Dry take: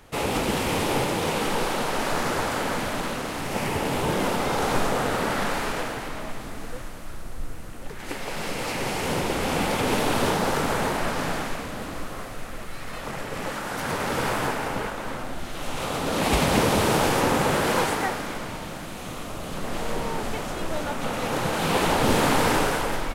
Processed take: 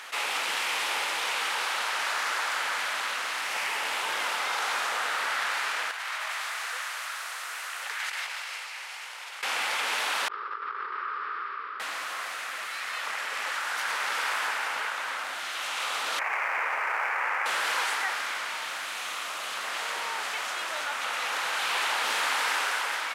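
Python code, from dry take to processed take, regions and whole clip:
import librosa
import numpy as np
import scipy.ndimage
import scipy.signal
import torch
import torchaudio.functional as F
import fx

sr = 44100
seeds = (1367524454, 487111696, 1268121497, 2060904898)

y = fx.chain(x, sr, fx.highpass(hz=670.0, slope=12),
    fx.over_compress(threshold_db=-39.0, ratio=-0.5), at=(5.91, 9.43))
y = fx.chain(y, sr, fx.double_bandpass(hz=700.0, octaves=1.6),
    fx.over_compress(threshold_db=-36.0, ratio=-0.5),
    fx.resample_bad(factor=4, down='none', up='filtered'), at=(10.28, 11.8))
y = fx.chain(y, sr, fx.median_filter(points=15),
    fx.highpass(hz=540.0, slope=12),
    fx.high_shelf_res(hz=2900.0, db=-8.0, q=3.0), at=(16.19, 17.46))
y = scipy.signal.sosfilt(scipy.signal.cheby1(2, 1.0, 1500.0, 'highpass', fs=sr, output='sos'), y)
y = fx.high_shelf(y, sr, hz=10000.0, db=-11.0)
y = fx.env_flatten(y, sr, amount_pct=50)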